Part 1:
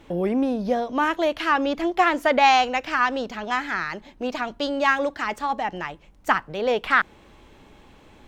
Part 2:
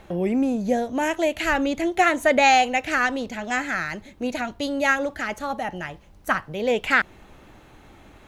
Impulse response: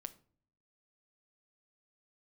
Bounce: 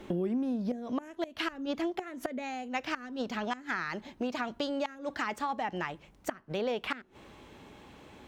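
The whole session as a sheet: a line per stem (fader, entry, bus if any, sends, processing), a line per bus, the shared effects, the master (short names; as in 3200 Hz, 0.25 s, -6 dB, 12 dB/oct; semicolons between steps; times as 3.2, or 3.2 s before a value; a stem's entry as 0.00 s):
-1.5 dB, 0.00 s, send -17 dB, HPF 72 Hz 12 dB/oct; flipped gate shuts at -12 dBFS, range -34 dB
-7.0 dB, 0.00 s, no send, small resonant body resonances 250/380 Hz, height 15 dB; auto duck -17 dB, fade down 1.10 s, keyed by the first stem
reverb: on, pre-delay 6 ms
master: compressor 5:1, threshold -30 dBFS, peak gain reduction 14 dB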